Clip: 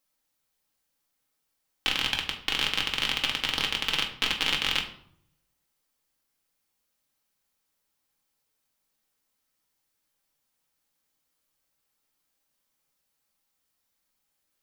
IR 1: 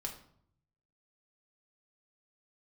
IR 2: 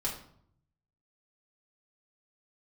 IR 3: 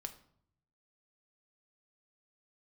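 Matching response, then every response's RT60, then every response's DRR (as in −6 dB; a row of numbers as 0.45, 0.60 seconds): 1; 0.65, 0.65, 0.65 seconds; −0.5, −6.0, 6.0 decibels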